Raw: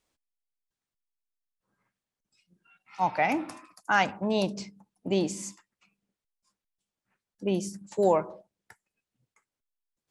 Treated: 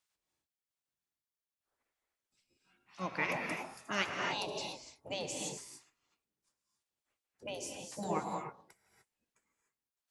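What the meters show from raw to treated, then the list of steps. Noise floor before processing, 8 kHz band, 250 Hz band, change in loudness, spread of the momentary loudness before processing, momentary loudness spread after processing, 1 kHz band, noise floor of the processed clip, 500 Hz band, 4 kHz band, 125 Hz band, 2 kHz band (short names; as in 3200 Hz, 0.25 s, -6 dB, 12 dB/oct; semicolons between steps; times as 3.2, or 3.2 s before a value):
under -85 dBFS, -2.5 dB, -13.0 dB, -10.0 dB, 17 LU, 14 LU, -10.5 dB, under -85 dBFS, -12.5 dB, -1.5 dB, -10.5 dB, -6.0 dB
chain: non-linear reverb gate 0.32 s rising, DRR 3 dB; spectral gate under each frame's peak -10 dB weak; gain -3.5 dB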